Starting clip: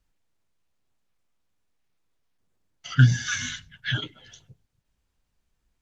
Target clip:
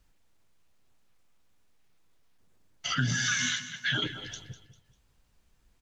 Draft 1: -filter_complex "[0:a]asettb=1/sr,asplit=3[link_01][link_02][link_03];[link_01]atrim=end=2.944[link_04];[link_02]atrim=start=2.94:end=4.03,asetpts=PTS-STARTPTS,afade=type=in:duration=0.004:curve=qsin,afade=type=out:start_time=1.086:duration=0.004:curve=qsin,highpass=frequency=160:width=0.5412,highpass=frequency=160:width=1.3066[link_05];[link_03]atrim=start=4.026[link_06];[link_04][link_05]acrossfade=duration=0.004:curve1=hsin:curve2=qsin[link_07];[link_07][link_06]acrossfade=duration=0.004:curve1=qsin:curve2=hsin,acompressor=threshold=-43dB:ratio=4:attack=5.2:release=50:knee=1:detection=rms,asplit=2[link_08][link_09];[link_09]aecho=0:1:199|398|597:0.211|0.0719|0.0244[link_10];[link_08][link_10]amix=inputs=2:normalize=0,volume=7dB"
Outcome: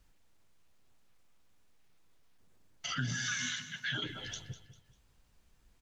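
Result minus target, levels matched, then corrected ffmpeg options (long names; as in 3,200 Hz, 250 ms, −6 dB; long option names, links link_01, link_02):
downward compressor: peak gain reduction +7 dB
-filter_complex "[0:a]asettb=1/sr,asplit=3[link_01][link_02][link_03];[link_01]atrim=end=2.944[link_04];[link_02]atrim=start=2.94:end=4.03,asetpts=PTS-STARTPTS,afade=type=in:duration=0.004:curve=qsin,afade=type=out:start_time=1.086:duration=0.004:curve=qsin,highpass=frequency=160:width=0.5412,highpass=frequency=160:width=1.3066[link_05];[link_03]atrim=start=4.026[link_06];[link_04][link_05]acrossfade=duration=0.004:curve1=hsin:curve2=qsin[link_07];[link_07][link_06]acrossfade=duration=0.004:curve1=qsin:curve2=hsin,acompressor=threshold=-33.5dB:ratio=4:attack=5.2:release=50:knee=1:detection=rms,asplit=2[link_08][link_09];[link_09]aecho=0:1:199|398|597:0.211|0.0719|0.0244[link_10];[link_08][link_10]amix=inputs=2:normalize=0,volume=7dB"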